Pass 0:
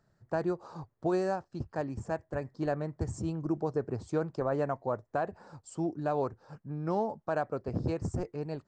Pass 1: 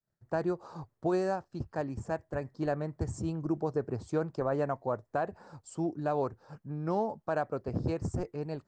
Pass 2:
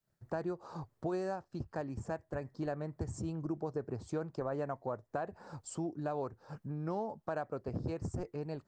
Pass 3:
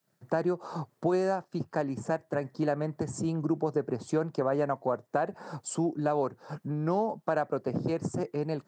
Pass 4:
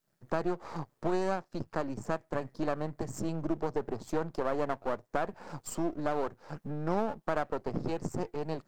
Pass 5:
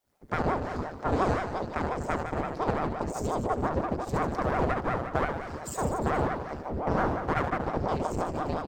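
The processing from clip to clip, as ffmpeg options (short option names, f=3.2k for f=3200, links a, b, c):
-af "agate=range=-33dB:threshold=-59dB:ratio=3:detection=peak"
-af "acompressor=threshold=-47dB:ratio=2,volume=4.5dB"
-af "highpass=f=140:w=0.5412,highpass=f=140:w=1.3066,volume=9dB"
-af "aeval=exprs='if(lt(val(0),0),0.251*val(0),val(0))':c=same"
-af "aecho=1:1:70|150.5|243.1|349.5|472:0.631|0.398|0.251|0.158|0.1,aeval=exprs='val(0)*sin(2*PI*420*n/s+420*0.85/5.7*sin(2*PI*5.7*n/s))':c=same,volume=4dB"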